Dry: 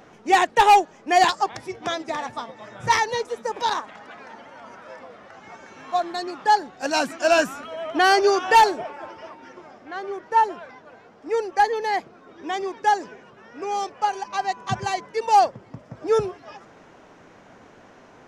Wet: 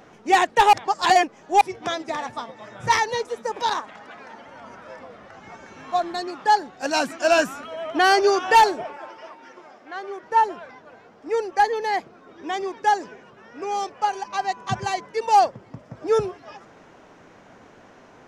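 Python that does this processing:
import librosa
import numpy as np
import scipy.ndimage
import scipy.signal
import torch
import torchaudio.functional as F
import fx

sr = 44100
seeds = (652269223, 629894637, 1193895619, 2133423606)

y = fx.low_shelf(x, sr, hz=150.0, db=8.5, at=(4.48, 6.22))
y = fx.highpass(y, sr, hz=380.0, slope=6, at=(8.97, 10.23))
y = fx.edit(y, sr, fx.reverse_span(start_s=0.73, length_s=0.88), tone=tone)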